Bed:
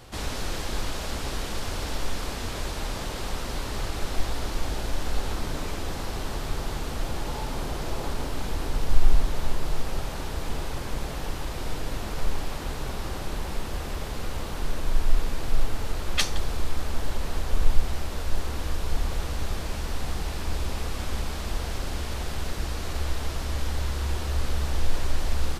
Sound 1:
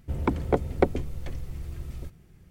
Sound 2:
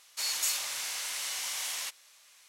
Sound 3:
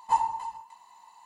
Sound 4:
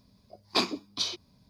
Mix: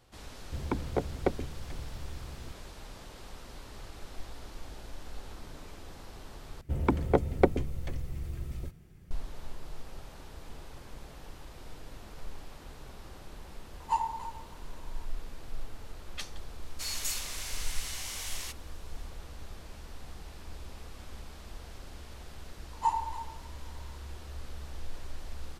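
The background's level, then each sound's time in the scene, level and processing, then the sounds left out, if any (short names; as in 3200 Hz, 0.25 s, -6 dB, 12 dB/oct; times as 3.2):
bed -15.5 dB
0.44 add 1 -7 dB
6.61 replace with 1 -1 dB
13.8 add 3 -5 dB + hard clip -15.5 dBFS
16.62 add 2 -4.5 dB
22.73 add 3 -4.5 dB
not used: 4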